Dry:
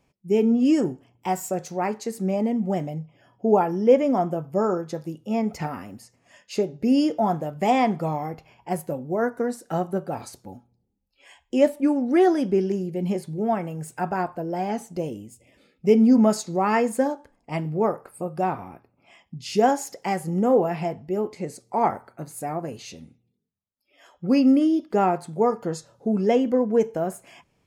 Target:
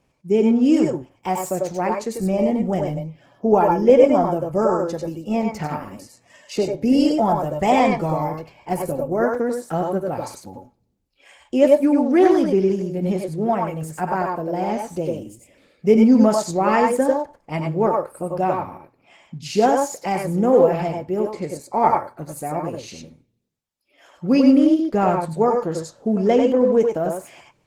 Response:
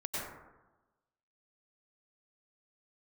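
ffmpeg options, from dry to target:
-filter_complex "[0:a]asplit=3[link_01][link_02][link_03];[link_01]afade=type=out:start_time=24.87:duration=0.02[link_04];[link_02]asubboost=boost=3.5:cutoff=150,afade=type=in:start_time=24.87:duration=0.02,afade=type=out:start_time=25.33:duration=0.02[link_05];[link_03]afade=type=in:start_time=25.33:duration=0.02[link_06];[link_04][link_05][link_06]amix=inputs=3:normalize=0[link_07];[1:a]atrim=start_sample=2205,atrim=end_sample=4410[link_08];[link_07][link_08]afir=irnorm=-1:irlink=0,volume=6.5dB" -ar 48000 -c:a libopus -b:a 16k

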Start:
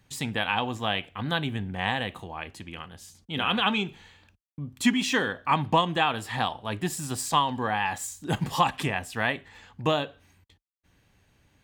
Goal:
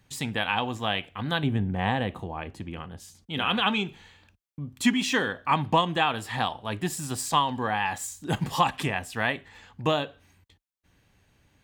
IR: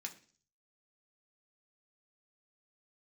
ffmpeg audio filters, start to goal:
-filter_complex "[0:a]asettb=1/sr,asplit=3[link_01][link_02][link_03];[link_01]atrim=end=1.434[link_04];[link_02]atrim=start=1.43:end=3,asetpts=PTS-STARTPTS,afade=type=in:duration=0.004:curve=qsin,afade=type=out:start_time=1.566:duration=0.004:curve=qsin,tiltshelf=frequency=1200:gain=6[link_05];[link_03]atrim=start=2.996[link_06];[link_04][link_05]acrossfade=duration=0.004:curve1=hsin:curve2=qsin[link_07];[link_07][link_06]acrossfade=duration=0.004:curve1=qsin:curve2=hsin"

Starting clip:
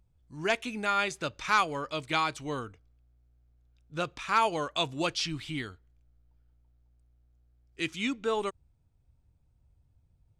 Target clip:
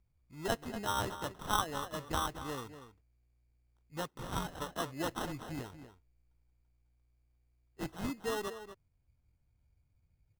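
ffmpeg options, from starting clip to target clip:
ffmpeg -i in.wav -filter_complex "[0:a]asplit=3[link_01][link_02][link_03];[link_01]afade=type=out:start_time=4.06:duration=0.02[link_04];[link_02]highpass=frequency=2400:width_type=q:width=1.9,afade=type=in:start_time=4.06:duration=0.02,afade=type=out:start_time=4.6:duration=0.02[link_05];[link_03]afade=type=in:start_time=4.6:duration=0.02[link_06];[link_04][link_05][link_06]amix=inputs=3:normalize=0,acrusher=samples=19:mix=1:aa=0.000001,asplit=2[link_07][link_08];[link_08]adelay=239.1,volume=-11dB,highshelf=frequency=4000:gain=-5.38[link_09];[link_07][link_09]amix=inputs=2:normalize=0,volume=-6.5dB" out.wav

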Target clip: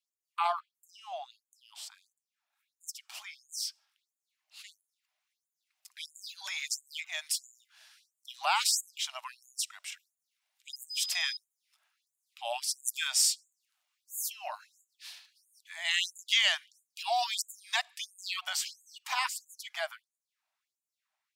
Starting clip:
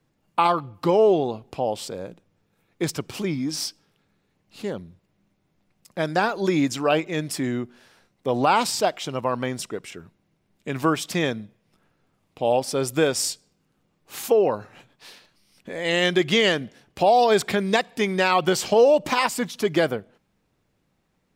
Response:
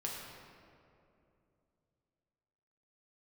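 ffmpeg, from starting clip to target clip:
-filter_complex "[0:a]asubboost=boost=10:cutoff=110,asettb=1/sr,asplit=3[link_01][link_02][link_03];[link_01]atrim=end=10.734[link_04];[link_02]atrim=start=10.73:end=11.37,asetpts=PTS-STARTPTS,afade=type=in:duration=0.004:curve=qsin,afade=type=out:start_time=0.636:duration=0.004:curve=qsin,aeval=exprs='val(0)+0.0158*sin(2*PI*5000*n/s)':channel_layout=same[link_05];[link_03]atrim=start=11.366[link_06];[link_04][link_05]acrossfade=duration=0.004:curve1=hsin:curve2=qsin[link_07];[link_07][link_06]acrossfade=duration=0.004:curve1=qsin:curve2=hsin,acrossover=split=200|900|2200[link_08][link_09][link_10][link_11];[link_11]dynaudnorm=framelen=920:gausssize=11:maxgain=10.5dB[link_12];[link_08][link_09][link_10][link_12]amix=inputs=4:normalize=0,afftfilt=real='re*gte(b*sr/1024,560*pow(6700/560,0.5+0.5*sin(2*PI*1.5*pts/sr)))':imag='im*gte(b*sr/1024,560*pow(6700/560,0.5+0.5*sin(2*PI*1.5*pts/sr)))':win_size=1024:overlap=0.75,volume=-9dB"

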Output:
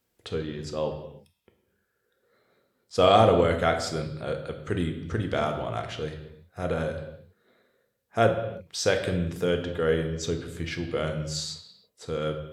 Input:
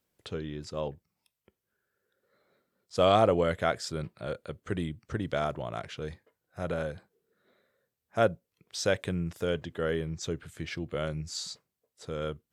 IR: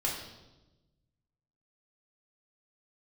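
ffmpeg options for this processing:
-filter_complex "[0:a]asplit=2[link_01][link_02];[1:a]atrim=start_sample=2205,afade=type=out:start_time=0.35:duration=0.01,atrim=end_sample=15876,asetrate=38367,aresample=44100[link_03];[link_02][link_03]afir=irnorm=-1:irlink=0,volume=-6.5dB[link_04];[link_01][link_04]amix=inputs=2:normalize=0"

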